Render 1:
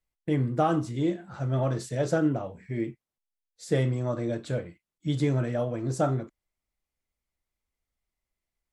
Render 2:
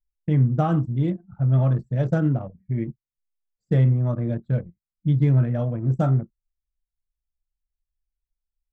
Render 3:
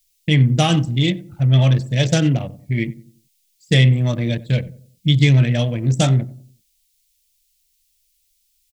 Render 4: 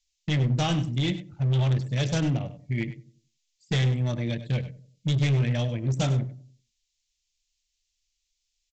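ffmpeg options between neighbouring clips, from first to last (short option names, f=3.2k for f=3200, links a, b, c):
-filter_complex "[0:a]acrossover=split=2100[a][b];[b]alimiter=level_in=15dB:limit=-24dB:level=0:latency=1:release=30,volume=-15dB[c];[a][c]amix=inputs=2:normalize=0,anlmdn=6.31,lowshelf=f=250:t=q:w=1.5:g=8"
-filter_complex "[0:a]asplit=2[a][b];[b]adelay=92,lowpass=f=810:p=1,volume=-16.5dB,asplit=2[c][d];[d]adelay=92,lowpass=f=810:p=1,volume=0.43,asplit=2[e][f];[f]adelay=92,lowpass=f=810:p=1,volume=0.43,asplit=2[g][h];[h]adelay=92,lowpass=f=810:p=1,volume=0.43[i];[a][c][e][g][i]amix=inputs=5:normalize=0,aexciter=amount=14.9:drive=5.3:freq=2.1k,volume=4.5dB"
-af "aresample=16000,asoftclip=type=hard:threshold=-13dB,aresample=44100,aecho=1:1:99:0.188,volume=-7.5dB"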